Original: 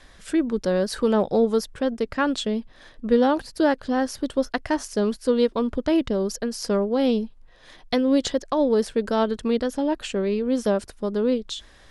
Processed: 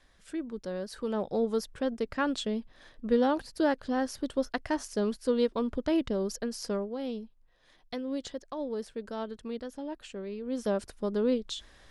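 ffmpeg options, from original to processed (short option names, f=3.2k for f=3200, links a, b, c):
-af "volume=3dB,afade=t=in:st=0.96:d=0.79:silence=0.446684,afade=t=out:st=6.54:d=0.44:silence=0.398107,afade=t=in:st=10.37:d=0.53:silence=0.334965"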